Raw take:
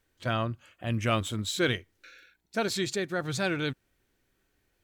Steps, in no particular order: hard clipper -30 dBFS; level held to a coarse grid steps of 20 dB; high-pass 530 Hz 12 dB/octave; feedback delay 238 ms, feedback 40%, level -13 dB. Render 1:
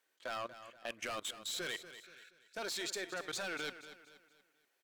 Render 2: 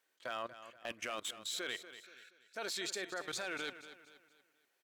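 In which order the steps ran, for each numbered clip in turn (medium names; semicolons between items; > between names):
high-pass > hard clipper > level held to a coarse grid > feedback delay; high-pass > level held to a coarse grid > hard clipper > feedback delay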